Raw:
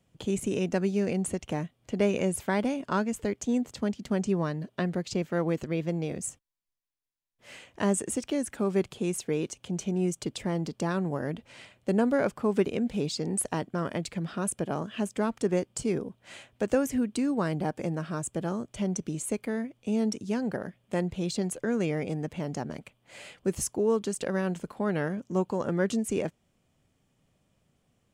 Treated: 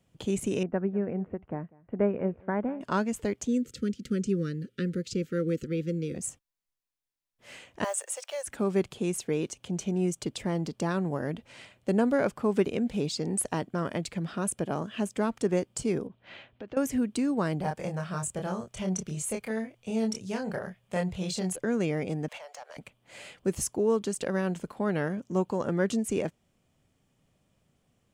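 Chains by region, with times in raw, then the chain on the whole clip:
0.63–2.81 LPF 1700 Hz 24 dB/oct + echo 0.196 s -19 dB + upward expander, over -39 dBFS
3.47–6.15 Chebyshev band-stop 520–1300 Hz, order 4 + dynamic EQ 2000 Hz, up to -5 dB, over -50 dBFS, Q 1
7.84–8.47 block floating point 7-bit + Chebyshev high-pass 540 Hz, order 5
16.07–16.77 LPF 3900 Hz 24 dB/oct + compressor 3:1, threshold -41 dBFS
17.61–21.56 bell 290 Hz -13 dB 0.64 oct + doubler 27 ms -3.5 dB
22.28–22.77 compressor, threshold -40 dBFS + steep high-pass 530 Hz 48 dB/oct + overdrive pedal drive 16 dB, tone 6900 Hz, clips at -33 dBFS
whole clip: dry

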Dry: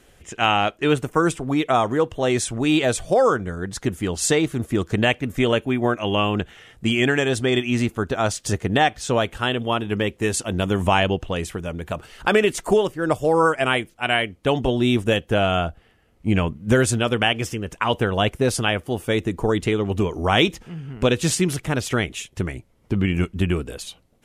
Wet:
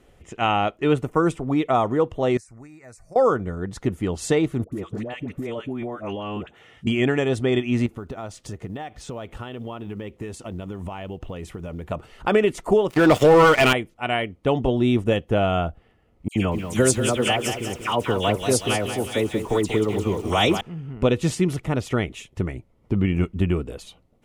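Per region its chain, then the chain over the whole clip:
2.37–3.16 passive tone stack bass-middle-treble 5-5-5 + compressor, threshold -35 dBFS + Chebyshev band-stop 2000–5100 Hz
4.64–6.87 HPF 140 Hz 6 dB/oct + compressor 10:1, threshold -24 dBFS + dispersion highs, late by 81 ms, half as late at 850 Hz
7.86–11.88 short-mantissa float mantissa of 4-bit + compressor 8:1, threshold -28 dBFS
12.9–13.73 weighting filter D + sample leveller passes 5 + compressor 3:1, threshold -13 dBFS
16.28–20.61 tone controls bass -4 dB, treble +14 dB + dispersion lows, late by 76 ms, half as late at 2400 Hz + lo-fi delay 0.186 s, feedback 55%, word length 6-bit, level -7.5 dB
whole clip: high shelf 2500 Hz -11 dB; notch 1600 Hz, Q 8.7

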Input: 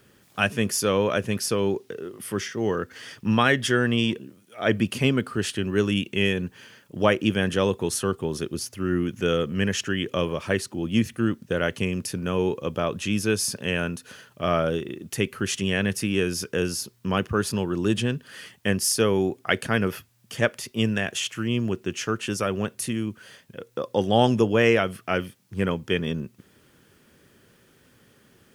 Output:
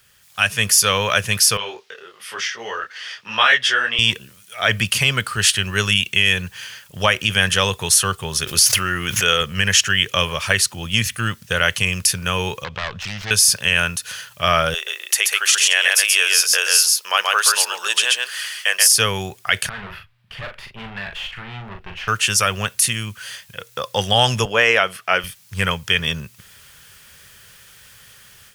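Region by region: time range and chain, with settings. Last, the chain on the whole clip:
1.57–3.99 three-band isolator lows -22 dB, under 290 Hz, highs -19 dB, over 5300 Hz + detuned doubles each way 37 cents
8.47–9.41 tone controls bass -7 dB, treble -2 dB + fast leveller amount 70%
12.64–13.31 self-modulated delay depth 0.52 ms + compressor 2.5:1, threshold -30 dBFS + air absorption 210 m
14.74–18.87 HPF 520 Hz 24 dB/oct + echo 0.131 s -3 dB
19.69–22.08 tube stage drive 32 dB, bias 0.65 + air absorption 450 m + doubler 40 ms -6 dB
24.45–25.24 HPF 360 Hz + tilt -2.5 dB/oct
whole clip: passive tone stack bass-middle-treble 10-0-10; AGC gain up to 10 dB; maximiser +9.5 dB; gain -1.5 dB

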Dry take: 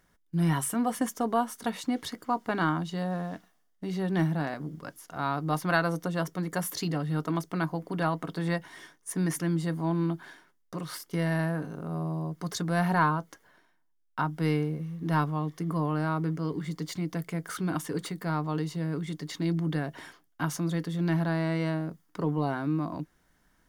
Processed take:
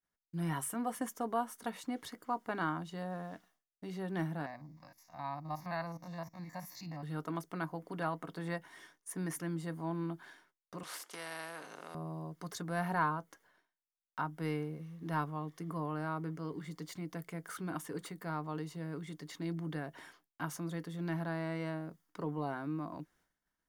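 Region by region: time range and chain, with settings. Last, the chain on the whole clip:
4.46–7.03 stepped spectrum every 50 ms + fixed phaser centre 2100 Hz, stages 8
10.83–11.95 BPF 490–7700 Hz + spectral compressor 2:1
whole clip: dynamic EQ 4400 Hz, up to -5 dB, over -51 dBFS, Q 0.81; expander -57 dBFS; low shelf 290 Hz -6.5 dB; gain -6 dB

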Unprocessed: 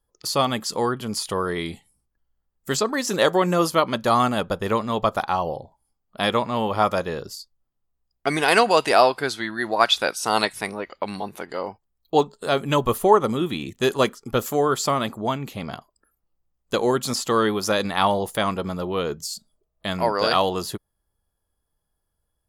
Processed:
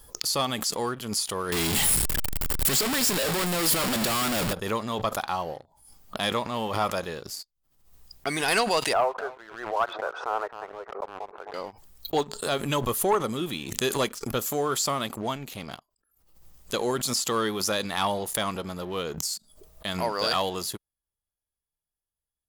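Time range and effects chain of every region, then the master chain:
1.52–4.53 infinite clipping + notch 6100 Hz, Q 6.3 + sample leveller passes 1
8.93–11.54 Chebyshev band-pass 410–1400 Hz, order 3 + echo 0.262 s -18 dB
whole clip: high shelf 3000 Hz +9.5 dB; sample leveller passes 2; backwards sustainer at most 74 dB/s; gain -14.5 dB

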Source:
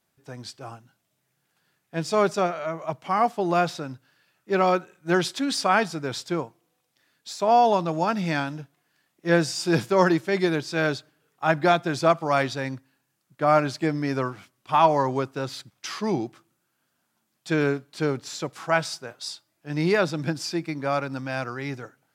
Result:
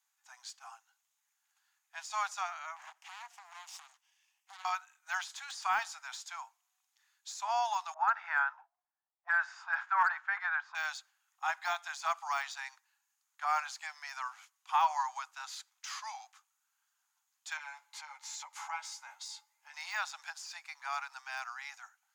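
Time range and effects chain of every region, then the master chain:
2.76–4.65 minimum comb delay 0.37 ms + compressor 10:1, threshold -33 dBFS + Doppler distortion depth 0.88 ms
7.94–10.75 hard clip -10 dBFS + envelope low-pass 410–1500 Hz up, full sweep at -23 dBFS
17.57–19.74 doubler 13 ms -3 dB + compressor 2.5:1, threshold -36 dBFS + small resonant body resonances 550/870/2100 Hz, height 14 dB, ringing for 35 ms
whole clip: steep high-pass 780 Hz 72 dB/oct; de-esser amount 90%; bell 6700 Hz +12 dB 0.23 oct; gain -7 dB

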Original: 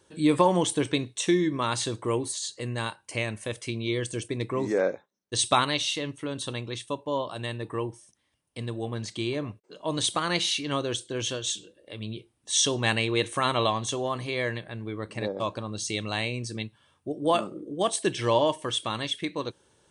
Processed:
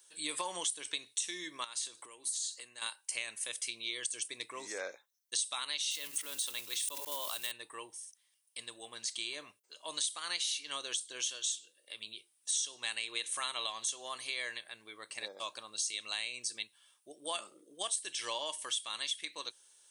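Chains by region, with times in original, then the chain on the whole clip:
1.64–2.82 compressor 8:1, threshold -35 dBFS + HPF 110 Hz
5.91–7.52 block floating point 5-bit + sustainer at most 38 dB/s
whole clip: differentiator; compressor 6:1, threshold -39 dBFS; low shelf 200 Hz -9.5 dB; gain +6.5 dB

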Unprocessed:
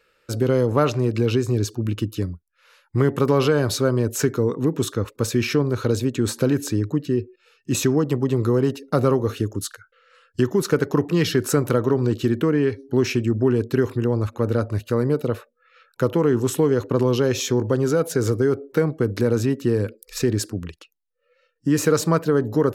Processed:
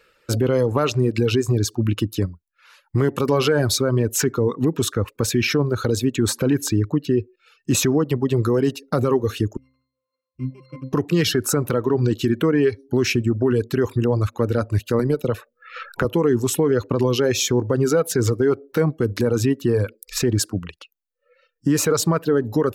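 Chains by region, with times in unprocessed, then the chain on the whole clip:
9.57–10.93 sample sorter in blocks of 16 samples + octave resonator C, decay 0.56 s
14.99–16.05 AM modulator 120 Hz, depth 15% + three-band squash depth 100%
whole clip: reverb removal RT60 1.2 s; limiter -15 dBFS; gain +5.5 dB

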